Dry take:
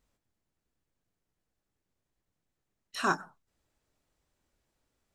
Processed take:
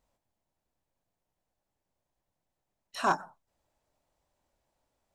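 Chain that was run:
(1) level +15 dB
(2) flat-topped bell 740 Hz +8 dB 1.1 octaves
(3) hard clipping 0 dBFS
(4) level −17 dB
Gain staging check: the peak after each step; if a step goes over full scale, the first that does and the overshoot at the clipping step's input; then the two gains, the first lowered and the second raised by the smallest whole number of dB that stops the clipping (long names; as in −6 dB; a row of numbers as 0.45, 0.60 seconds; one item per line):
−1.0, +3.5, 0.0, −17.0 dBFS
step 2, 3.5 dB
step 1 +11 dB, step 4 −13 dB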